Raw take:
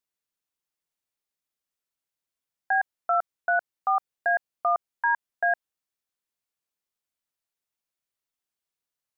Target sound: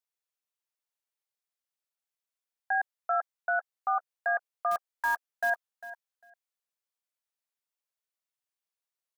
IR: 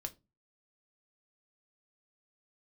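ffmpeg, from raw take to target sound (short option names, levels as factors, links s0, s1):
-filter_complex "[0:a]highpass=f=440:w=0.5412,highpass=f=440:w=1.3066,asettb=1/sr,asplit=3[s0][s1][s2];[s0]atrim=end=4.714[s3];[s1]atrim=start=4.71:end=5.5,asetpts=PTS-STARTPTS,afade=t=in:d=0.004:c=qsin,afade=t=out:st=0.786:d=0.004:c=qsin,acrusher=bits=4:mode=log:mix=0:aa=0.000001[s4];[s2]atrim=start=5.496[s5];[s3][s4]acrossfade=d=0.004:c1=hsin:c2=qsin[s6];[s6][s5]acrossfade=d=0.004:c1=qsin:c2=hsin,asplit=2[s7][s8];[s8]aecho=0:1:400|800:0.168|0.0285[s9];[s7][s9]amix=inputs=2:normalize=0,volume=0.596"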